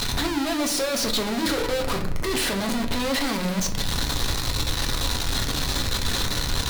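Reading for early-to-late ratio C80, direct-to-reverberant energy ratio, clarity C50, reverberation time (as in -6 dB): 14.0 dB, 2.5 dB, 10.5 dB, 0.55 s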